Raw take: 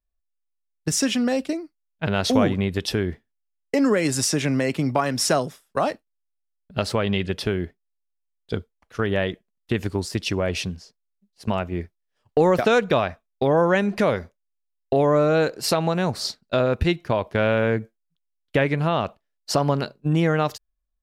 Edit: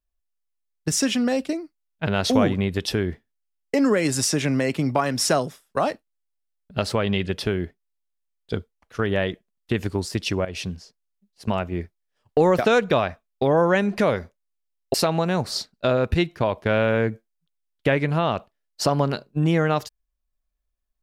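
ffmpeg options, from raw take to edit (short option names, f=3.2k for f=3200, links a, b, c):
-filter_complex "[0:a]asplit=3[a][b][c];[a]atrim=end=10.45,asetpts=PTS-STARTPTS,afade=t=out:st=10.446:d=0.004:c=hsin:silence=0.211349[d];[b]atrim=start=10.45:end=14.942,asetpts=PTS-STARTPTS,afade=t=in:d=0.26:silence=0.211349[e];[c]atrim=start=15.628[f];[d][e]concat=n=2:v=0:a=1[g];[g][f]acrossfade=d=0.004:c1=hsin:c2=hsin"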